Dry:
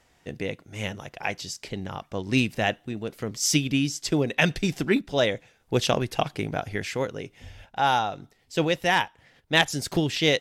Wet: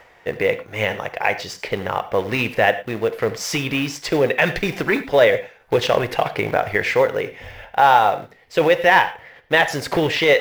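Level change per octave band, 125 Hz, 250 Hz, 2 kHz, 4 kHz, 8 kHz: +0.5, +1.0, +8.5, +2.0, −2.5 decibels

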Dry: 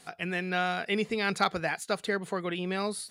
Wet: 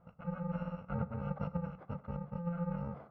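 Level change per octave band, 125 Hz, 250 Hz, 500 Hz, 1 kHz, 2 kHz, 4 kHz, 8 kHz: +2.0 dB, −5.0 dB, −12.5 dB, −14.0 dB, −24.5 dB, below −30 dB, below −40 dB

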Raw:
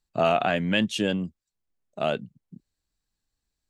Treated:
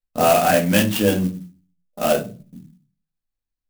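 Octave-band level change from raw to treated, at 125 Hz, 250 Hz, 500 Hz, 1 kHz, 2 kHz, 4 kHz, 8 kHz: +7.5, +6.5, +7.5, +7.5, +5.0, +4.0, +16.0 decibels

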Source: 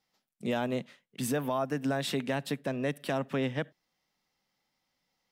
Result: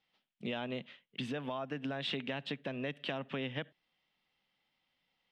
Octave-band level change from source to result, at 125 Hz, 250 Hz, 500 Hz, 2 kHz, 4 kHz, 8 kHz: −8.0 dB, −7.5 dB, −8.0 dB, −4.0 dB, 0.0 dB, below −20 dB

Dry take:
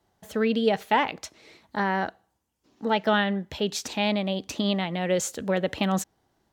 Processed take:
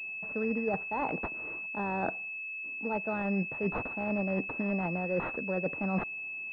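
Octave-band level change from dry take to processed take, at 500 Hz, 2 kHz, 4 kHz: −7.0 dB, −2.0 dB, below −30 dB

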